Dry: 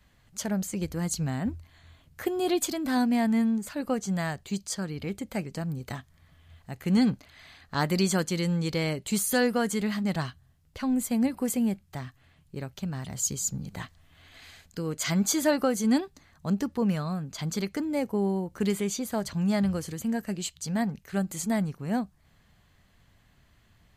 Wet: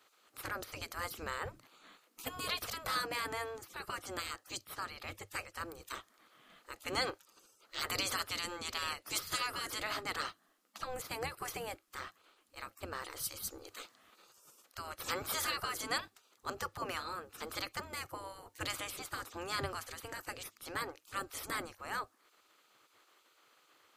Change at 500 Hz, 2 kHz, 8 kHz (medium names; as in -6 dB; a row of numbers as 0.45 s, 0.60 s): -13.5 dB, -3.0 dB, -10.5 dB